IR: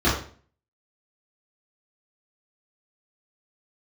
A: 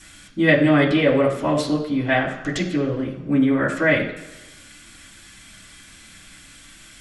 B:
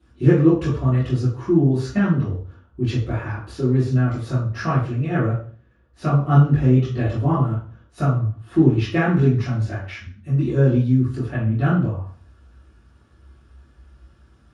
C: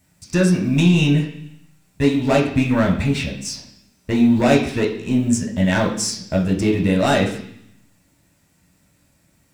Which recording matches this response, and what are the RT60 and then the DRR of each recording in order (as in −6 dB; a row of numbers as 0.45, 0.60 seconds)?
B; 1.1, 0.45, 0.65 seconds; −6.0, −11.0, −2.0 decibels